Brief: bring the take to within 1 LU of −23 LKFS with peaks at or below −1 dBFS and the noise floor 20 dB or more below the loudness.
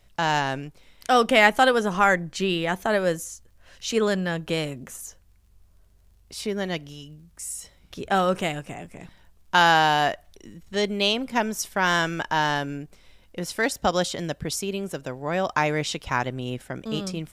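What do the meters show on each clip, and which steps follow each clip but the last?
crackle rate 32 per second; integrated loudness −24.0 LKFS; sample peak −3.5 dBFS; target loudness −23.0 LKFS
→ click removal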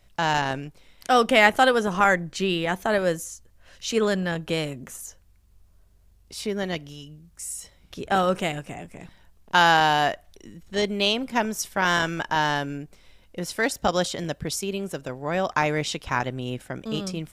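crackle rate 0.12 per second; integrated loudness −24.0 LKFS; sample peak −3.5 dBFS; target loudness −23.0 LKFS
→ level +1 dB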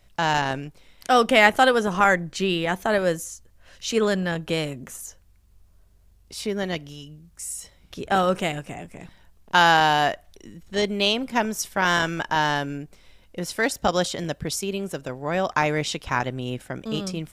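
integrated loudness −23.0 LKFS; sample peak −2.5 dBFS; background noise floor −57 dBFS

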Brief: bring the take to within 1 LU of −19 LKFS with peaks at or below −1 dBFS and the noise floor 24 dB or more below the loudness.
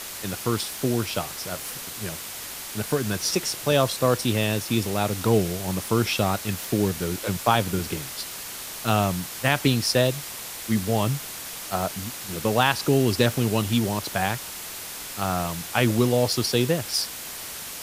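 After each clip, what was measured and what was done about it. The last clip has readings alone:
background noise floor −36 dBFS; target noise floor −49 dBFS; integrated loudness −25.0 LKFS; sample peak −4.5 dBFS; target loudness −19.0 LKFS
→ broadband denoise 13 dB, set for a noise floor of −36 dBFS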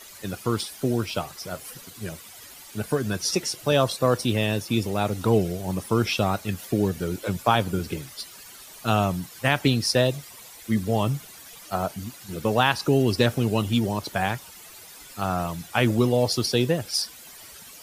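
background noise floor −45 dBFS; target noise floor −49 dBFS
→ broadband denoise 6 dB, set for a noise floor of −45 dBFS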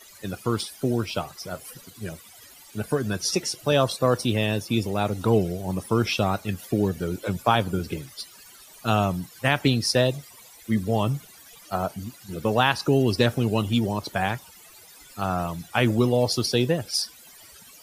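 background noise floor −49 dBFS; integrated loudness −25.0 LKFS; sample peak −5.0 dBFS; target loudness −19.0 LKFS
→ level +6 dB
brickwall limiter −1 dBFS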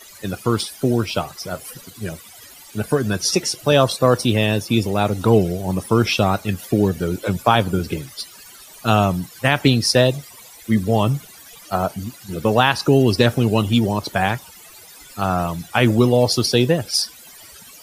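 integrated loudness −19.0 LKFS; sample peak −1.0 dBFS; background noise floor −43 dBFS

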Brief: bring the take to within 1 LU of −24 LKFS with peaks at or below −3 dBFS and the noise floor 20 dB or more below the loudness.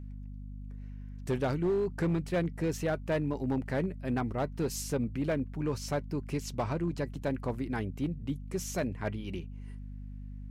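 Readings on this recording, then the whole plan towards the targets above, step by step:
share of clipped samples 1.3%; peaks flattened at −24.0 dBFS; mains hum 50 Hz; hum harmonics up to 250 Hz; level of the hum −40 dBFS; integrated loudness −33.5 LKFS; sample peak −24.0 dBFS; target loudness −24.0 LKFS
→ clipped peaks rebuilt −24 dBFS
mains-hum notches 50/100/150/200/250 Hz
level +9.5 dB

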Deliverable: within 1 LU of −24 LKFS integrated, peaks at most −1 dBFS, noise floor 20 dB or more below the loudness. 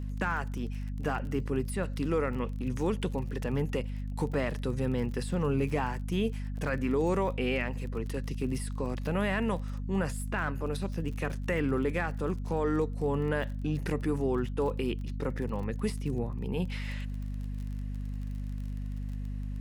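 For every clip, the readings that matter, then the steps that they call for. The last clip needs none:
crackle rate 30 per second; mains hum 50 Hz; hum harmonics up to 250 Hz; level of the hum −33 dBFS; integrated loudness −32.5 LKFS; sample peak −17.0 dBFS; target loudness −24.0 LKFS
→ click removal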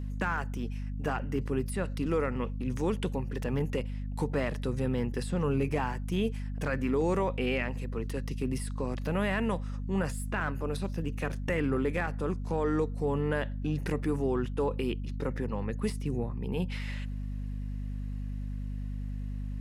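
crackle rate 0.15 per second; mains hum 50 Hz; hum harmonics up to 250 Hz; level of the hum −33 dBFS
→ hum removal 50 Hz, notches 5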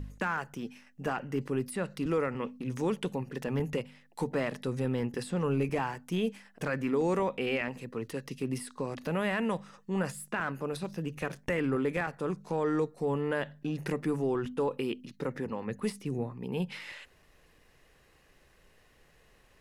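mains hum none found; integrated loudness −33.5 LKFS; sample peak −18.5 dBFS; target loudness −24.0 LKFS
→ level +9.5 dB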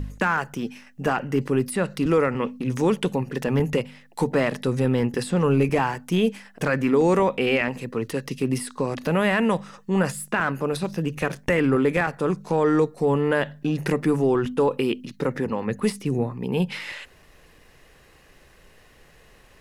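integrated loudness −24.0 LKFS; sample peak −9.0 dBFS; background noise floor −54 dBFS

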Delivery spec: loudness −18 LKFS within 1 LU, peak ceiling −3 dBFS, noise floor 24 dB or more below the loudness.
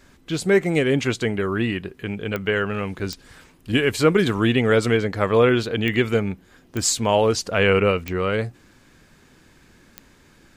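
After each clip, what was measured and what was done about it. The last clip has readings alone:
number of clicks 6; integrated loudness −21.0 LKFS; sample peak −5.0 dBFS; target loudness −18.0 LKFS
→ click removal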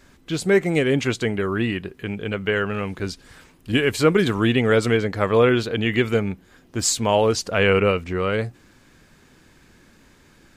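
number of clicks 0; integrated loudness −21.0 LKFS; sample peak −5.0 dBFS; target loudness −18.0 LKFS
→ level +3 dB
brickwall limiter −3 dBFS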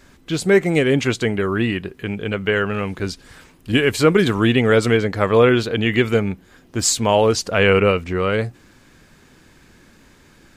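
integrated loudness −18.0 LKFS; sample peak −3.0 dBFS; background noise floor −51 dBFS

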